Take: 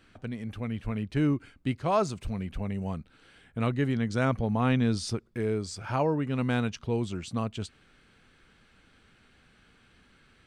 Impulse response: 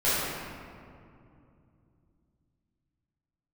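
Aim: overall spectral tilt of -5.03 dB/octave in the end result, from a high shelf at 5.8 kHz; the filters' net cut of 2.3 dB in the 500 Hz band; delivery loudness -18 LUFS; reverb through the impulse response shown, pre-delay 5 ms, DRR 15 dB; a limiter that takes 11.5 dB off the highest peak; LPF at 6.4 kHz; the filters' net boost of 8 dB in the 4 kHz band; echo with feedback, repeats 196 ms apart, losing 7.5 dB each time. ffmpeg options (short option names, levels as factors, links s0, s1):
-filter_complex "[0:a]lowpass=6400,equalizer=f=500:t=o:g=-3,equalizer=f=4000:t=o:g=9,highshelf=f=5800:g=5.5,alimiter=limit=0.0668:level=0:latency=1,aecho=1:1:196|392|588|784|980:0.422|0.177|0.0744|0.0312|0.0131,asplit=2[s0][s1];[1:a]atrim=start_sample=2205,adelay=5[s2];[s1][s2]afir=irnorm=-1:irlink=0,volume=0.0316[s3];[s0][s3]amix=inputs=2:normalize=0,volume=5.96"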